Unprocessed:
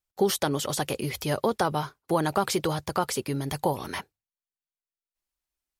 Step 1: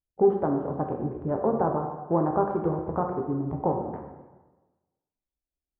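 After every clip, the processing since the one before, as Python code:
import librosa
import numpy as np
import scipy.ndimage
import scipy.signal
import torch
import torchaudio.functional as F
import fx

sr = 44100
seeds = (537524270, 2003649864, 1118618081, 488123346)

y = fx.wiener(x, sr, points=41)
y = scipy.signal.sosfilt(scipy.signal.butter(4, 1100.0, 'lowpass', fs=sr, output='sos'), y)
y = fx.rev_plate(y, sr, seeds[0], rt60_s=1.2, hf_ratio=0.85, predelay_ms=0, drr_db=1.5)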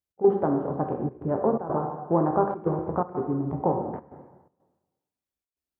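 y = scipy.signal.sosfilt(scipy.signal.butter(2, 84.0, 'highpass', fs=sr, output='sos'), x)
y = fx.step_gate(y, sr, bpm=124, pattern='x.xxxxxxx.xx', floor_db=-12.0, edge_ms=4.5)
y = y * librosa.db_to_amplitude(1.5)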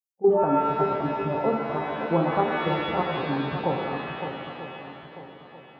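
y = fx.bin_expand(x, sr, power=1.5)
y = fx.echo_swing(y, sr, ms=943, ratio=1.5, feedback_pct=35, wet_db=-9)
y = fx.rev_shimmer(y, sr, seeds[1], rt60_s=1.7, semitones=7, shimmer_db=-2, drr_db=4.5)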